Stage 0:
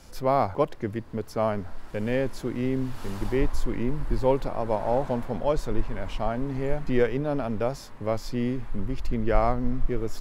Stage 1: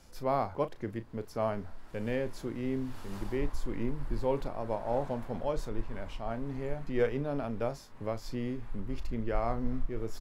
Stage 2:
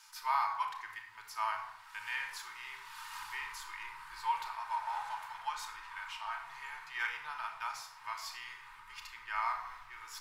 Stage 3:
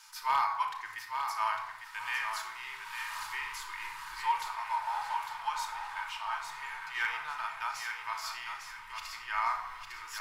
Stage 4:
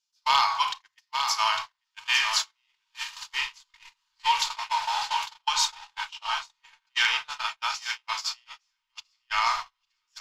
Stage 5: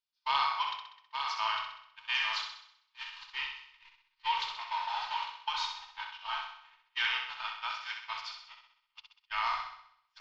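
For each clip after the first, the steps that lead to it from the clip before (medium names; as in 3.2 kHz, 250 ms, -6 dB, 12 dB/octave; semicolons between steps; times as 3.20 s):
doubling 35 ms -12.5 dB; random flutter of the level, depth 55%; trim -4.5 dB
elliptic high-pass 920 Hz, stop band 40 dB; simulated room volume 2800 m³, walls furnished, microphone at 2.7 m; trim +4.5 dB
hard clipper -24 dBFS, distortion -25 dB; thinning echo 853 ms, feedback 29%, level -6 dB; trim +3.5 dB
gate -36 dBFS, range -44 dB; high-order bell 4.4 kHz +14.5 dB; trim +5.5 dB
low-pass 4.2 kHz 24 dB/octave; on a send: flutter echo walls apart 11 m, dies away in 0.68 s; on the sum: trim -8 dB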